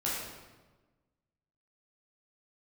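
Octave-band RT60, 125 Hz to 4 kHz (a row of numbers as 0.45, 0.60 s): 1.6, 1.5, 1.3, 1.2, 1.0, 0.90 s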